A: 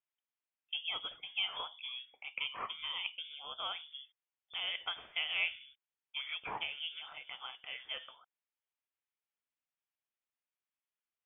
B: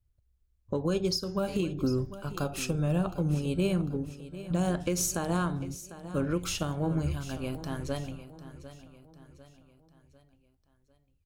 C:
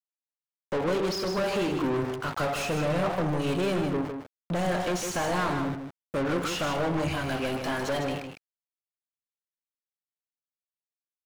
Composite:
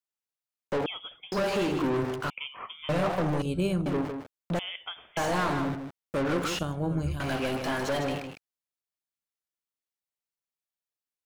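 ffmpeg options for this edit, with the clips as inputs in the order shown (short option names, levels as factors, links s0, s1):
-filter_complex "[0:a]asplit=3[s0][s1][s2];[1:a]asplit=2[s3][s4];[2:a]asplit=6[s5][s6][s7][s8][s9][s10];[s5]atrim=end=0.862[s11];[s0]atrim=start=0.858:end=1.322[s12];[s6]atrim=start=1.318:end=2.302[s13];[s1]atrim=start=2.298:end=2.892[s14];[s7]atrim=start=2.888:end=3.422[s15];[s3]atrim=start=3.418:end=3.862[s16];[s8]atrim=start=3.858:end=4.592[s17];[s2]atrim=start=4.588:end=5.172[s18];[s9]atrim=start=5.168:end=6.592[s19];[s4]atrim=start=6.588:end=7.202[s20];[s10]atrim=start=7.198[s21];[s11][s12]acrossfade=d=0.004:c1=hsin:c2=hsin[s22];[s22][s13]acrossfade=d=0.004:c1=hsin:c2=hsin[s23];[s23][s14]acrossfade=d=0.004:c1=hsin:c2=hsin[s24];[s24][s15]acrossfade=d=0.004:c1=hsin:c2=hsin[s25];[s25][s16]acrossfade=d=0.004:c1=hsin:c2=hsin[s26];[s26][s17]acrossfade=d=0.004:c1=hsin:c2=hsin[s27];[s27][s18]acrossfade=d=0.004:c1=hsin:c2=hsin[s28];[s28][s19]acrossfade=d=0.004:c1=hsin:c2=hsin[s29];[s29][s20]acrossfade=d=0.004:c1=hsin:c2=hsin[s30];[s30][s21]acrossfade=d=0.004:c1=hsin:c2=hsin"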